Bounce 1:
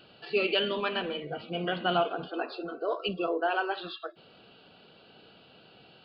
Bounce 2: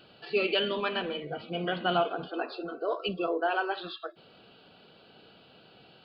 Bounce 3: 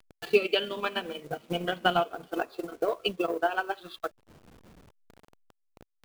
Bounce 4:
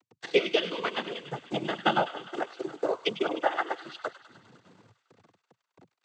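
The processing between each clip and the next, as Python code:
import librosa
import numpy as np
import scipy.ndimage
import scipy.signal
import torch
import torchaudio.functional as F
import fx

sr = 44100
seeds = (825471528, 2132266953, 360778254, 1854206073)

y1 = fx.notch(x, sr, hz=2800.0, q=27.0)
y2 = fx.delta_hold(y1, sr, step_db=-45.5)
y2 = fx.transient(y2, sr, attack_db=11, sustain_db=-8)
y2 = y2 * librosa.db_to_amplitude(-3.0)
y3 = fx.echo_wet_highpass(y2, sr, ms=101, feedback_pct=70, hz=1500.0, wet_db=-11.0)
y3 = fx.noise_vocoder(y3, sr, seeds[0], bands=16)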